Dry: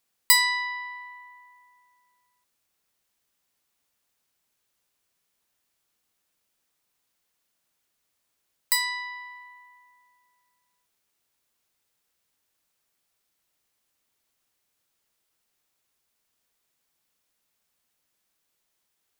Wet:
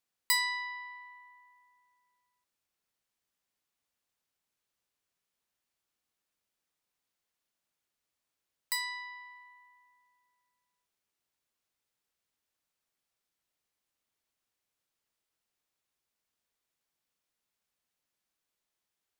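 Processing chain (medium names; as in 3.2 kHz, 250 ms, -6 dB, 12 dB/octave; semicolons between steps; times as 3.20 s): treble shelf 8.4 kHz -5 dB; trim -8 dB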